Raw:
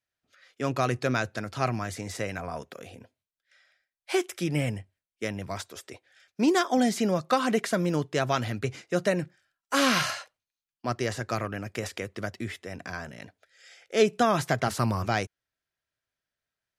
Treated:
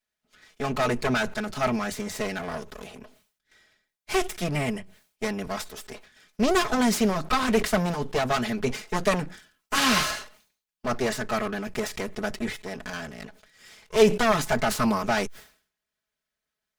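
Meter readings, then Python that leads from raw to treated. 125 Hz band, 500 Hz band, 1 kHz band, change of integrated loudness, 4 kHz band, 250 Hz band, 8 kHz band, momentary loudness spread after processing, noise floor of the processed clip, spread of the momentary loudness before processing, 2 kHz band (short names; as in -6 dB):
-2.0 dB, +2.5 dB, +2.0 dB, +2.0 dB, +3.5 dB, +1.5 dB, +4.0 dB, 15 LU, under -85 dBFS, 15 LU, +3.0 dB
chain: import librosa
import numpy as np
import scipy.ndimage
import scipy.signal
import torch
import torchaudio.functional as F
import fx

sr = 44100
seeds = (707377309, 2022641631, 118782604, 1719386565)

y = fx.lower_of_two(x, sr, delay_ms=4.7)
y = fx.sustainer(y, sr, db_per_s=120.0)
y = y * 10.0 ** (4.0 / 20.0)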